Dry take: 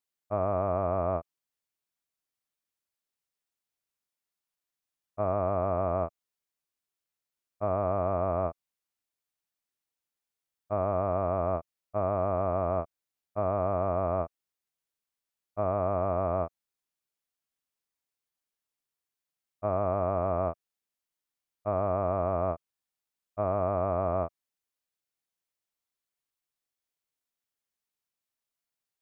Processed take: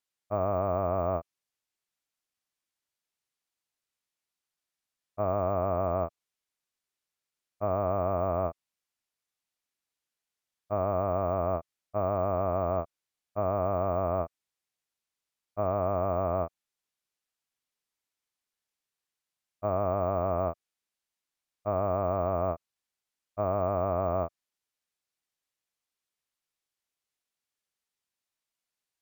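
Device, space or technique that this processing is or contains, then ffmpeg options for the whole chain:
crushed at another speed: -af "asetrate=22050,aresample=44100,acrusher=samples=4:mix=1:aa=0.000001,asetrate=88200,aresample=44100"

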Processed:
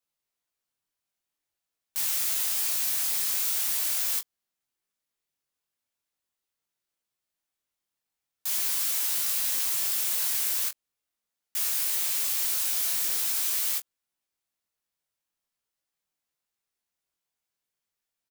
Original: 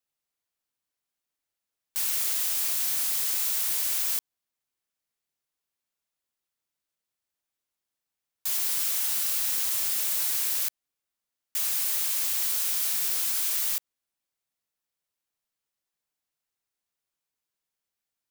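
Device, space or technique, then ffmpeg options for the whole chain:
double-tracked vocal: -filter_complex "[0:a]asplit=2[link_01][link_02];[link_02]adelay=22,volume=-10.5dB[link_03];[link_01][link_03]amix=inputs=2:normalize=0,flanger=delay=16:depth=7.4:speed=0.43,volume=3dB"

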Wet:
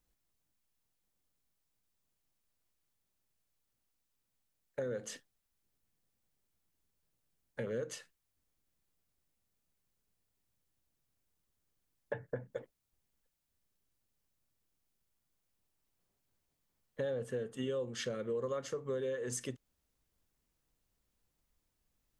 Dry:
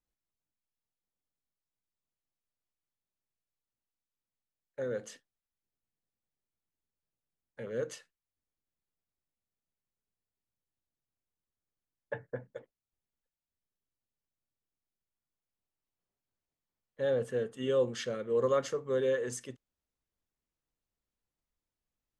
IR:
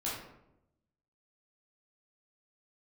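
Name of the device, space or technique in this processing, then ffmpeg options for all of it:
ASMR close-microphone chain: -af "lowshelf=frequency=240:gain=4.5,acompressor=threshold=-42dB:ratio=6,highshelf=frequency=6700:gain=4,volume=6.5dB"

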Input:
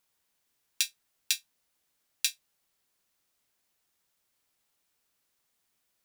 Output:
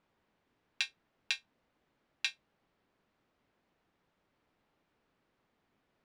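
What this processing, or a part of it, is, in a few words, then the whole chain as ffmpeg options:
phone in a pocket: -af "lowpass=3200,equalizer=frequency=240:width_type=o:width=2.1:gain=4.5,highshelf=frequency=2100:gain=-11.5,volume=9dB"

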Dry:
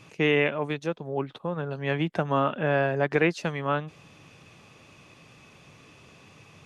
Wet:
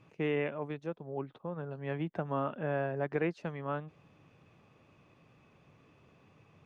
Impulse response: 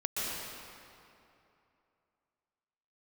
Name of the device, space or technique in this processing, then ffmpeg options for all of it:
through cloth: -af "highshelf=frequency=3000:gain=-17,volume=-8dB"

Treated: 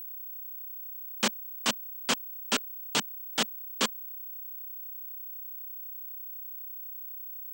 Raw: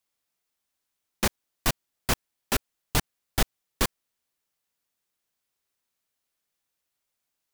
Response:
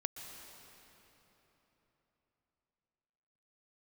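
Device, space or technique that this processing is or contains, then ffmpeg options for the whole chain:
old television with a line whistle: -af "highpass=frequency=220:width=0.5412,highpass=frequency=220:width=1.3066,equalizer=frequency=220:width_type=q:width=4:gain=4,equalizer=frequency=340:width_type=q:width=4:gain=-9,equalizer=frequency=720:width_type=q:width=4:gain=-6,equalizer=frequency=1900:width_type=q:width=4:gain=-3,equalizer=frequency=3100:width_type=q:width=4:gain=6,equalizer=frequency=7700:width_type=q:width=4:gain=4,lowpass=frequency=7800:width=0.5412,lowpass=frequency=7800:width=1.3066,aeval=exprs='val(0)+0.0126*sin(2*PI*15734*n/s)':channel_layout=same"

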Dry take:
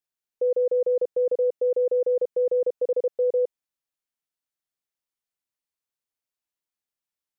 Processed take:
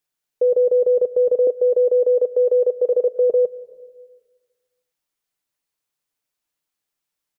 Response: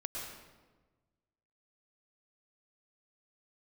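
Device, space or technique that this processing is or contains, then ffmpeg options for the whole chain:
compressed reverb return: -filter_complex "[0:a]asplit=2[link_01][link_02];[1:a]atrim=start_sample=2205[link_03];[link_02][link_03]afir=irnorm=-1:irlink=0,acompressor=threshold=-25dB:ratio=5,volume=-12dB[link_04];[link_01][link_04]amix=inputs=2:normalize=0,aecho=1:1:6.7:0.3,asettb=1/sr,asplit=3[link_05][link_06][link_07];[link_05]atrim=end=1.474[link_08];[link_06]atrim=start=1.47:end=3.3,asetpts=PTS-STARTPTS,afade=type=in:duration=0.004:curve=qsin,afade=type=out:start_time=1.826:duration=0.004:curve=qsin,highpass=frequency=250:width=0.5412,highpass=frequency=250:width=1.3066[link_09];[link_07]atrim=start=3.296[link_10];[link_08][link_09]acrossfade=duration=0.004:curve1=hsin:curve2=qsin[link_11];[link_11][link_10]acrossfade=duration=0.004:curve1=qsin:curve2=hsin,volume=6dB"

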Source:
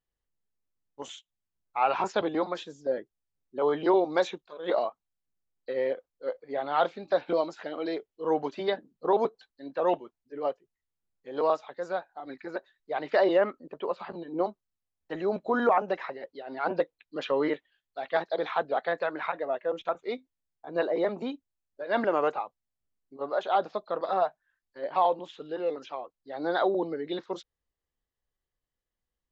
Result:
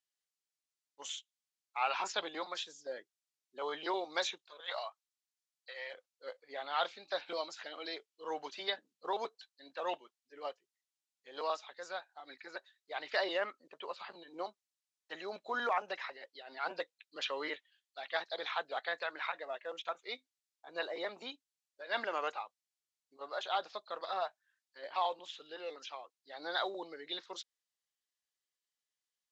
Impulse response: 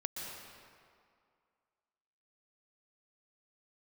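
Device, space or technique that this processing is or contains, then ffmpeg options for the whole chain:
piezo pickup straight into a mixer: -filter_complex "[0:a]lowpass=6100,aderivative,asettb=1/sr,asplit=3[link_01][link_02][link_03];[link_01]atrim=end=4.604[link_04];[link_02]atrim=start=4.6:end=5.94,asetpts=PTS-STARTPTS,afade=type=in:duration=0.004:curve=qsin,afade=type=out:start_time=1.336:duration=0.004:curve=qsin,highpass=frequency=640:width=0.5412,highpass=frequency=640:width=1.3066[link_05];[link_03]atrim=start=5.936[link_06];[link_04][link_05]acrossfade=duration=0.004:curve1=hsin:curve2=qsin[link_07];[link_07][link_06]acrossfade=duration=0.004:curve1=qsin:curve2=hsin,volume=9dB"

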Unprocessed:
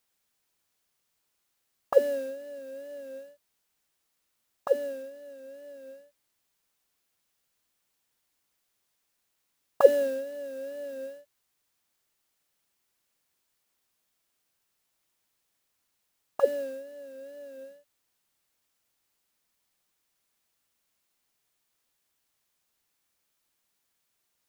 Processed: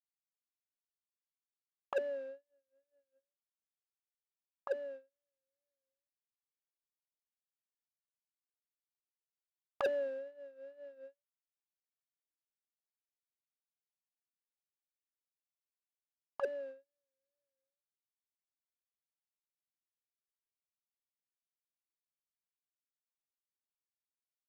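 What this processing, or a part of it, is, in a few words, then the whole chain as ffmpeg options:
walkie-talkie: -af "highpass=430,lowpass=2300,asoftclip=type=hard:threshold=-19.5dB,agate=range=-40dB:threshold=-39dB:ratio=16:detection=peak,volume=-8dB"

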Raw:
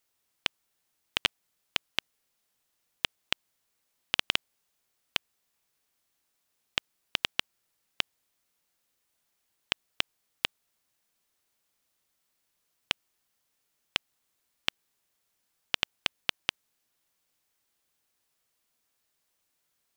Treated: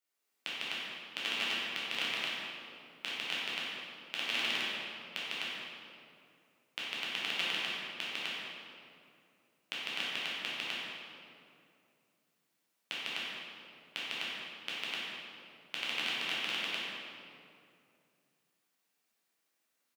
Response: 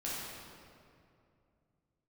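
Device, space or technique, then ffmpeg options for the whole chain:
stadium PA: -filter_complex "[0:a]highpass=frequency=170:width=0.5412,highpass=frequency=170:width=1.3066,equalizer=frequency=2200:width_type=o:width=0.77:gain=3,aecho=1:1:151.6|253.6:0.891|0.891[link_01];[1:a]atrim=start_sample=2205[link_02];[link_01][link_02]afir=irnorm=-1:irlink=0,asettb=1/sr,asplit=3[link_03][link_04][link_05];[link_03]atrim=end=1.894[link_06];[link_04]atrim=start=1.89:end=3.18,asetpts=PTS-STARTPTS,afade=type=in:duration=0.004:curve=qsin,afade=type=out:start_time=1.286:duration=0.004:curve=qsin,asplit=2[link_07][link_08];[link_08]adelay=34,volume=-4dB[link_09];[link_07][link_09]amix=inputs=2:normalize=0,atrim=end_sample=56889[link_10];[link_05]atrim=start=3.176[link_11];[link_06][link_10]acrossfade=duration=0.004:curve1=hsin:curve2=qsin[link_12];[link_12][link_11]acrossfade=duration=0.004:curve1=qsin:curve2=hsin,volume=-9dB"

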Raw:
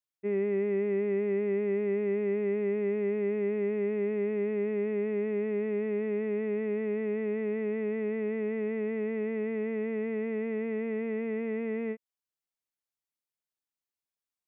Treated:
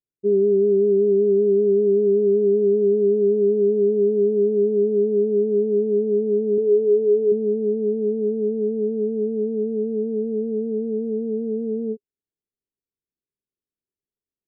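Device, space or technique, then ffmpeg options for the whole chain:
under water: -filter_complex "[0:a]asettb=1/sr,asplit=3[link_01][link_02][link_03];[link_01]atrim=end=6.574[link_04];[link_02]atrim=start=6.57:end=7.32,asetpts=PTS-STARTPTS,afade=type=in:duration=0.004:curve=qsin,afade=type=out:start_time=0.746:duration=0.004:curve=qsin,aecho=1:1:7.2:0.7,atrim=end_sample=33075[link_05];[link_03]atrim=start=7.316[link_06];[link_04][link_05]acrossfade=duration=0.004:curve1=hsin:curve2=qsin[link_07];[link_07][link_06]acrossfade=duration=0.004:curve1=qsin:curve2=hsin,lowpass=frequency=430:width=0.5412,lowpass=frequency=430:width=1.3066,equalizer=frequency=410:width_type=o:width=0.22:gain=7.5,volume=7.5dB"

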